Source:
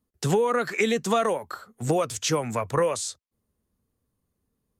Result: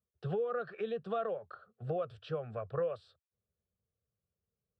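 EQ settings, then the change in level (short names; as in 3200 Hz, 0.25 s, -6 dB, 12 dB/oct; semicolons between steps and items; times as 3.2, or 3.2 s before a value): HPF 79 Hz; tape spacing loss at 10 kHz 40 dB; fixed phaser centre 1400 Hz, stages 8; -7.0 dB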